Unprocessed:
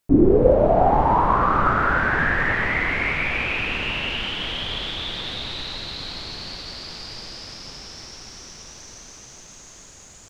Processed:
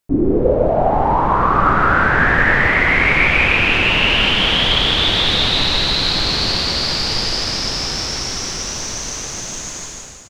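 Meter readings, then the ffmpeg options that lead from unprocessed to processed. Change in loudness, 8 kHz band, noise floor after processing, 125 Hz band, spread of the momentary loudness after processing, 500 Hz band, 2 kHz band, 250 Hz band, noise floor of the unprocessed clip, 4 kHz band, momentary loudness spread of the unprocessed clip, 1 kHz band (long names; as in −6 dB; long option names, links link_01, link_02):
+6.0 dB, +16.0 dB, −30 dBFS, +6.0 dB, 11 LU, +2.5 dB, +8.5 dB, +3.0 dB, −45 dBFS, +14.0 dB, 21 LU, +4.5 dB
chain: -filter_complex "[0:a]dynaudnorm=framelen=240:gausssize=5:maxgain=16.5dB,asplit=2[link_01][link_02];[link_02]aecho=0:1:153:0.708[link_03];[link_01][link_03]amix=inputs=2:normalize=0,volume=-1.5dB"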